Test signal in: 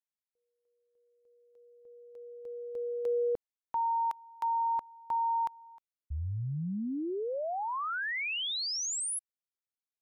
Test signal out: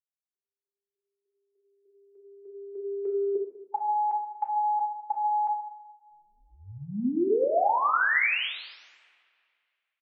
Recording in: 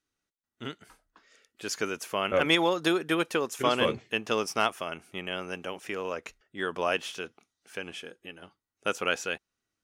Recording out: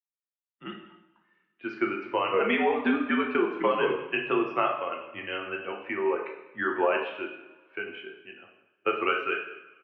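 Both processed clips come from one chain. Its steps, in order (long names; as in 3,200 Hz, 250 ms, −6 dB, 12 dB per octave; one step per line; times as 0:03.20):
spectral dynamics exaggerated over time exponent 1.5
downward compressor 6 to 1, threshold −31 dBFS
single-tap delay 196 ms −20 dB
coupled-rooms reverb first 0.74 s, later 2.2 s, from −21 dB, DRR 0 dB
single-sideband voice off tune −80 Hz 330–2,700 Hz
level +8.5 dB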